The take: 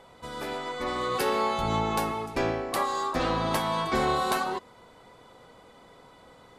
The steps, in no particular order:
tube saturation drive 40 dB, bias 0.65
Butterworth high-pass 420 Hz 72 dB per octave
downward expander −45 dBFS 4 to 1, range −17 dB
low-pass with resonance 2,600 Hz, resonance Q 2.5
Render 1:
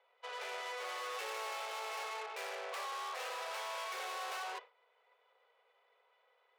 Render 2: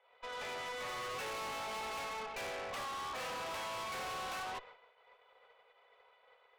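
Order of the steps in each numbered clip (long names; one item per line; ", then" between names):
low-pass with resonance, then tube saturation, then downward expander, then Butterworth high-pass
low-pass with resonance, then downward expander, then Butterworth high-pass, then tube saturation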